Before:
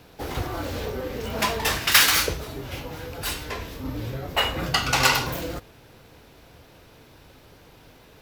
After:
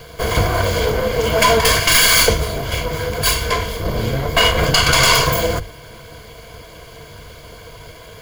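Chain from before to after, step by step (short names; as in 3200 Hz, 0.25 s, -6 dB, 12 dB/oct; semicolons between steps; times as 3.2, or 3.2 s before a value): minimum comb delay 1.8 ms; ripple EQ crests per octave 1.8, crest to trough 10 dB; maximiser +14 dB; gain -1 dB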